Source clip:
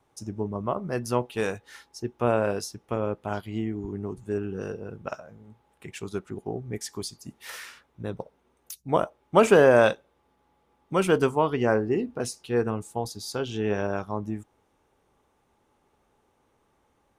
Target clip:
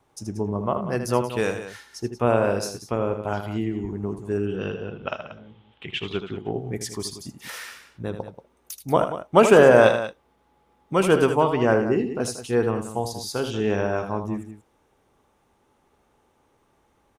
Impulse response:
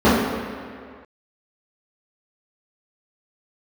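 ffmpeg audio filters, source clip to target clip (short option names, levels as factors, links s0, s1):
-filter_complex "[0:a]asettb=1/sr,asplit=3[s0][s1][s2];[s0]atrim=end=4.474[s3];[s1]atrim=start=4.47:end=6.53,asetpts=PTS-STARTPTS,afade=t=in:d=0.004:c=qsin,afade=t=out:st=2.056:d=0.004:c=qsin,lowpass=f=3200:t=q:w=6.6[s4];[s2]atrim=start=6.526[s5];[s3][s4]acrossfade=d=0.004:c1=hsin:c2=qsin[s6];[s6][s5]acrossfade=d=0.004:c1=qsin:c2=hsin,aecho=1:1:78.72|183.7:0.355|0.251,volume=1.41"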